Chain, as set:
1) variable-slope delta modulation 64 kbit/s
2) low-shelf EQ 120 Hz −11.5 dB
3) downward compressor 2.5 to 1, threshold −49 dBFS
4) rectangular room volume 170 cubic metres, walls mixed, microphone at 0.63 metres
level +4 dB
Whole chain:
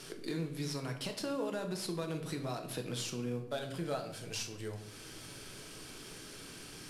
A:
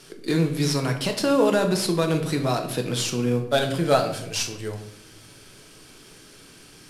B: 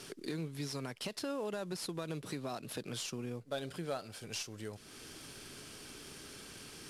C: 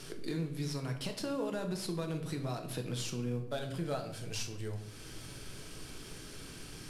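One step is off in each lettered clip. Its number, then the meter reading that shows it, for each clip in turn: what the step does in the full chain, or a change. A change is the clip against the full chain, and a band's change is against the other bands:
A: 3, average gain reduction 9.5 dB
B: 4, echo-to-direct ratio −4.0 dB to none audible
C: 2, 125 Hz band +4.0 dB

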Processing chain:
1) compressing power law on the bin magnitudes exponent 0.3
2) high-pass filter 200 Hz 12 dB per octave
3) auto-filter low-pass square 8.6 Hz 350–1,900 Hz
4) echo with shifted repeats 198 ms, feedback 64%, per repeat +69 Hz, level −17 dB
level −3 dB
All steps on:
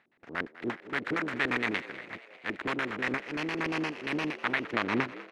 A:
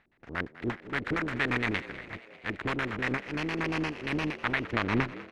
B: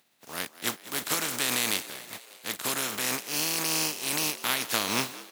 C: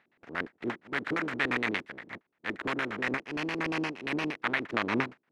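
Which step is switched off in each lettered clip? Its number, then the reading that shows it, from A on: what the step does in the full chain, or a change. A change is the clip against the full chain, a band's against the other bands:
2, 125 Hz band +7.5 dB
3, 8 kHz band +28.5 dB
4, echo-to-direct ratio −14.5 dB to none audible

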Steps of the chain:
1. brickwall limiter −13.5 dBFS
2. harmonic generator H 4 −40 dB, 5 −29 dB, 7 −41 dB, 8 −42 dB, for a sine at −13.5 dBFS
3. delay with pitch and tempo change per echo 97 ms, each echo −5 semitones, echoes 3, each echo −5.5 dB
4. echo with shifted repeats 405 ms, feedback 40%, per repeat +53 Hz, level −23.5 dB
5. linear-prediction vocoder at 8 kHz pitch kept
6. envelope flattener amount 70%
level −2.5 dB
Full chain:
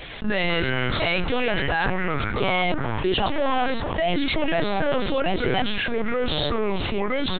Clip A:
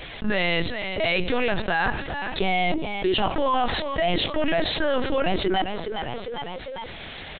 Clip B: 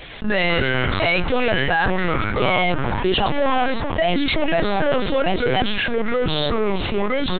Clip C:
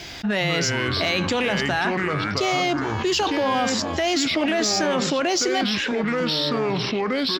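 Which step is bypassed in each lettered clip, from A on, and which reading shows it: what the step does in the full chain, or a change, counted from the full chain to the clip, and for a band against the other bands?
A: 3, change in momentary loudness spread +7 LU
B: 1, average gain reduction 3.5 dB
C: 5, 4 kHz band +3.5 dB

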